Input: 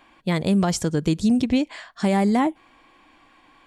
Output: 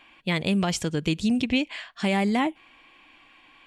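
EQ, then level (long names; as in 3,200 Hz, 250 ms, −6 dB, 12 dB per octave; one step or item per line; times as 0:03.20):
parametric band 2,700 Hz +12 dB 0.95 octaves
−4.5 dB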